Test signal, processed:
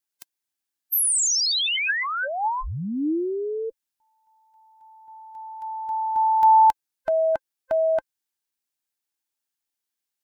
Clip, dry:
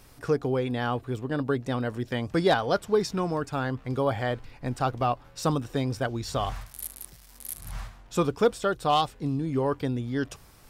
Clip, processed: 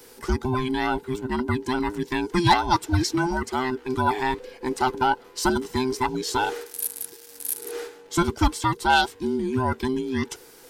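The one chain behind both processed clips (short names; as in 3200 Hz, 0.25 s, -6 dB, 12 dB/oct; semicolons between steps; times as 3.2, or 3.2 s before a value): band inversion scrambler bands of 500 Hz; high shelf 2200 Hz +9 dB; small resonant body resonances 310/860/1600 Hz, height 7 dB, ringing for 30 ms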